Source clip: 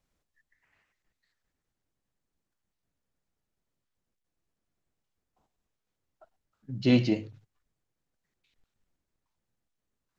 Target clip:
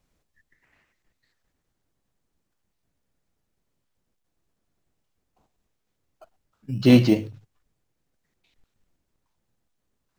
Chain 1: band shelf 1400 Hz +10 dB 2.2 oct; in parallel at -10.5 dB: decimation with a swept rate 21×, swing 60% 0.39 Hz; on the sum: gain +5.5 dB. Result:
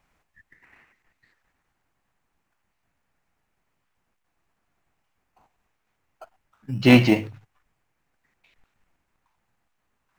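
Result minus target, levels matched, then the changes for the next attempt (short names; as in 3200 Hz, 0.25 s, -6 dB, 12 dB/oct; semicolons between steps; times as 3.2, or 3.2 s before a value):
1000 Hz band +8.5 dB
remove: band shelf 1400 Hz +10 dB 2.2 oct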